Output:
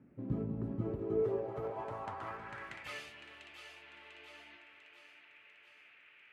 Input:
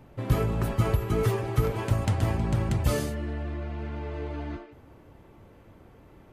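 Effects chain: band noise 1.2–2.6 kHz -55 dBFS; two-band feedback delay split 350 Hz, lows 214 ms, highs 696 ms, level -9 dB; band-pass sweep 240 Hz -> 2.8 kHz, 0.67–3.10 s; trim -2.5 dB

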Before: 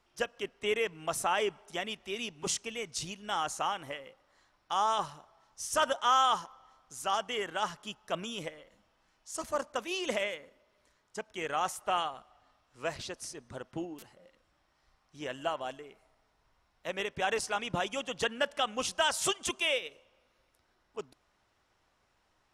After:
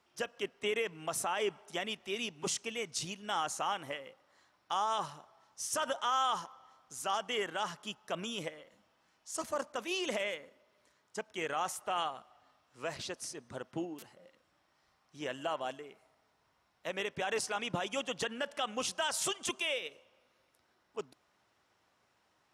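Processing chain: high-pass 110 Hz 12 dB/octave; peak limiter -24 dBFS, peak gain reduction 8 dB

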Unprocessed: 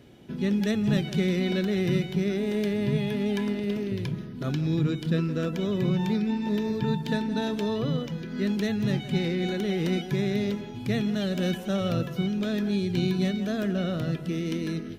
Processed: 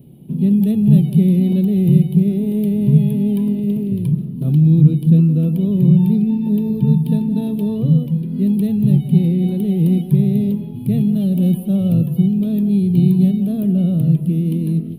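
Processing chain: FFT filter 100 Hz 0 dB, 150 Hz +13 dB, 280 Hz +1 dB, 1 kHz -11 dB, 1.6 kHz -27 dB, 2.7 kHz -10 dB, 4.3 kHz -14 dB, 6.6 kHz -28 dB, 10 kHz +9 dB; trim +4.5 dB

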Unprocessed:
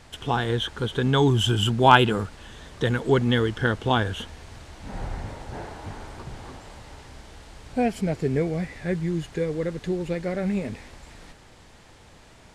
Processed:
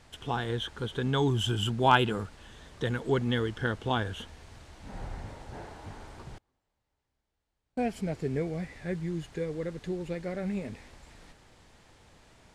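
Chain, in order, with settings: 6.38–7.80 s: gate -32 dBFS, range -32 dB; trim -7 dB

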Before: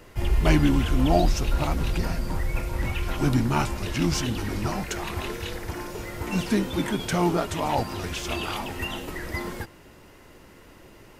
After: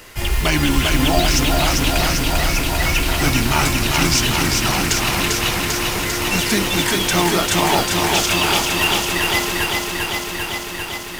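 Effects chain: tilt shelf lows -7 dB, about 1.2 kHz; modulation noise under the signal 21 dB; loudness maximiser +15 dB; bit-crushed delay 396 ms, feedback 80%, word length 7-bit, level -3.5 dB; trim -6 dB

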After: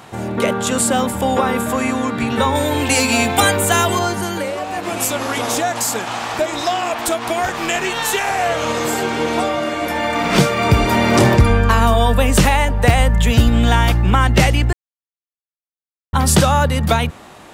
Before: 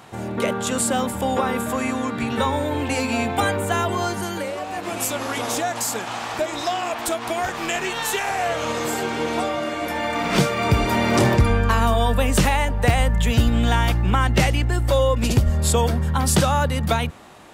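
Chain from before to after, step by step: 2.55–3.99 s: treble shelf 3 kHz +11 dB; 14.73–16.13 s: mute; trim +5 dB

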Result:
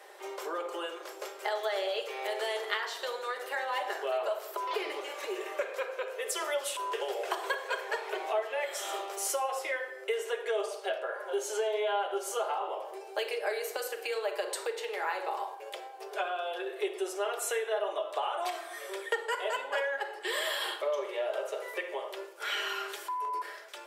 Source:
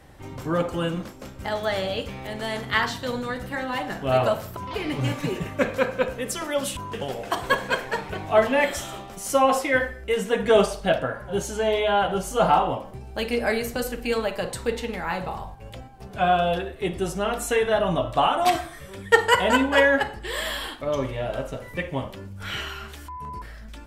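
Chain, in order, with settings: compression 10:1, threshold -31 dBFS, peak gain reduction 21.5 dB; steep high-pass 360 Hz 72 dB/octave; simulated room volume 2900 m³, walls furnished, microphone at 1.3 m; trim +1.5 dB

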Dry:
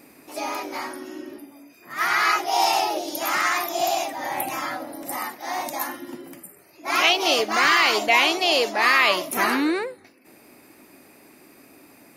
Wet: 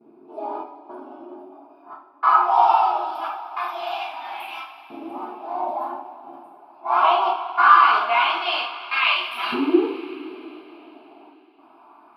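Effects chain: high-pass 210 Hz 6 dB/octave; gate with hold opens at -45 dBFS; peaking EQ 490 Hz +14.5 dB 3 oct; static phaser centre 1.9 kHz, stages 6; reverse echo 36 ms -20.5 dB; LFO band-pass saw up 0.21 Hz 350–3000 Hz; trance gate "xxxx..xxx" 101 bpm -60 dB; two-slope reverb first 0.46 s, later 3.8 s, from -18 dB, DRR -6 dB; trim -3.5 dB

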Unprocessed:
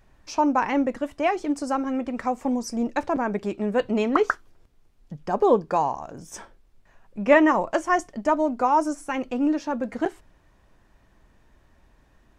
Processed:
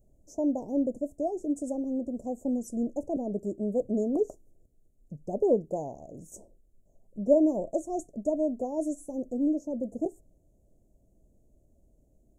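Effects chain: Chebyshev band-stop 640–6800 Hz, order 4; trim -4 dB

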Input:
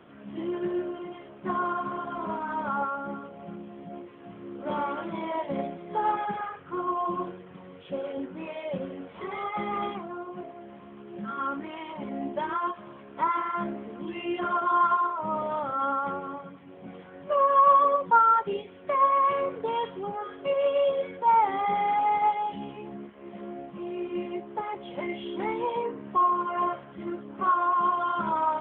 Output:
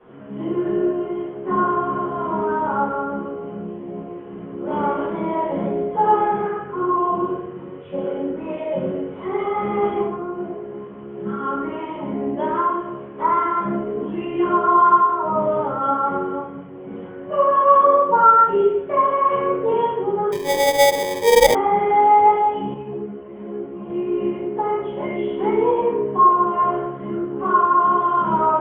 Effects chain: distance through air 420 m; simulated room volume 250 m³, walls mixed, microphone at 5.6 m; 20.32–21.55 s: sample-rate reducer 1.4 kHz, jitter 0%; small resonant body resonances 410/3000 Hz, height 11 dB, ringing for 45 ms; 22.74–23.90 s: three-phase chorus; trim -6.5 dB

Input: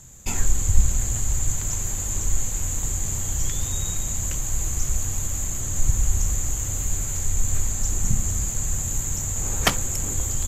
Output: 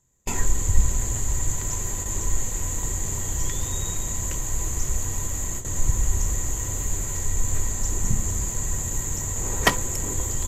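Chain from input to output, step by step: gate with hold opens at -17 dBFS; peaking EQ 400 Hz +6.5 dB 1.1 oct; small resonant body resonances 1/1.9 kHz, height 13 dB, ringing for 65 ms; trim -1.5 dB

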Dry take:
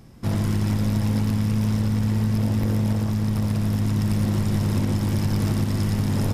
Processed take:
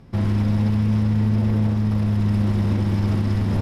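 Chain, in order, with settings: peaking EQ 7.3 kHz -8 dB 1.1 oct; time stretch by phase-locked vocoder 0.57×; distance through air 53 m; trim +3 dB

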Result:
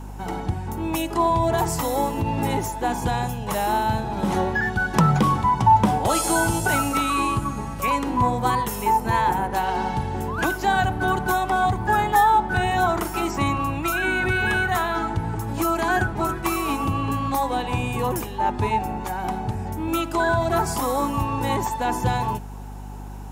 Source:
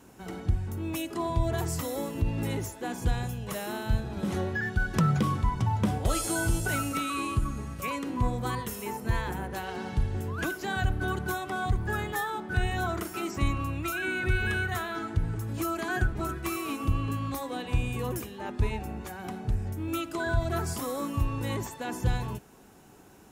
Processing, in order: high-pass 120 Hz; peaking EQ 870 Hz +13 dB 0.46 oct; hum 50 Hz, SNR 13 dB; trim +7 dB

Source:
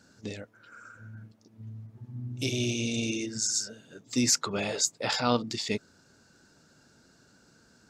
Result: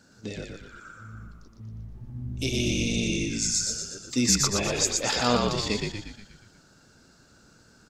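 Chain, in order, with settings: frequency-shifting echo 119 ms, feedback 53%, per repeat -53 Hz, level -3 dB; trim +1.5 dB

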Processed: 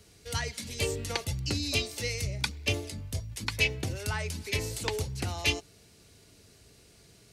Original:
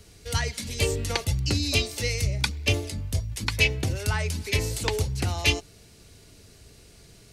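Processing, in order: high-pass 87 Hz 6 dB/octave; trim -4.5 dB

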